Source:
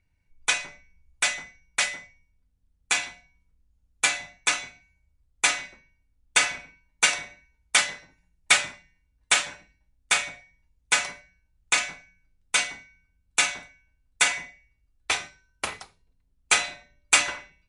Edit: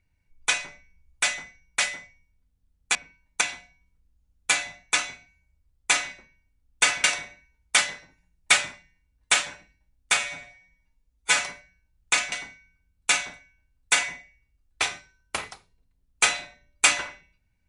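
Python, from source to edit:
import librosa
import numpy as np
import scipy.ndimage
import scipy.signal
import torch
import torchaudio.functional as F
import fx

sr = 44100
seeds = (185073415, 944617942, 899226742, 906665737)

y = fx.edit(x, sr, fx.move(start_s=6.58, length_s=0.46, to_s=2.95),
    fx.stretch_span(start_s=10.17, length_s=0.8, factor=1.5),
    fx.cut(start_s=11.92, length_s=0.69), tone=tone)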